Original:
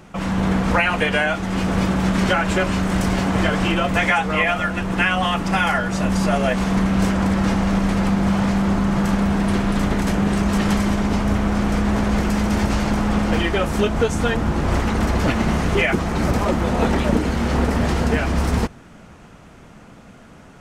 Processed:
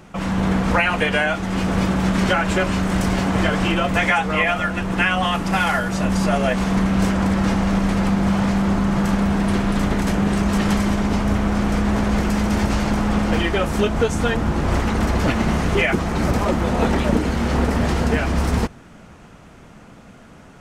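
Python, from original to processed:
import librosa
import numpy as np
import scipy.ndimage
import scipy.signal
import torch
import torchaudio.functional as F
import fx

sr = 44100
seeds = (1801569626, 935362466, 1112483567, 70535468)

y = fx.cvsd(x, sr, bps=64000, at=(5.34, 5.96))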